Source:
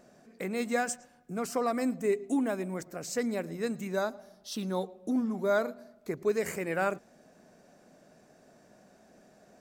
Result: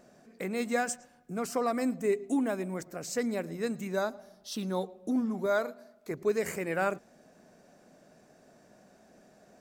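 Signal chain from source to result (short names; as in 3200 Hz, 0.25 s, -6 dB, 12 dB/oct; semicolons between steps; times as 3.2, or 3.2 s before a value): 5.46–6.11 low shelf 230 Hz -10 dB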